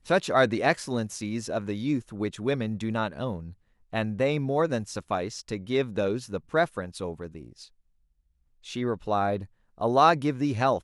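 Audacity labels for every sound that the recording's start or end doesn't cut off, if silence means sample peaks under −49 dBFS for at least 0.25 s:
3.930000	7.680000	sound
8.640000	9.460000	sound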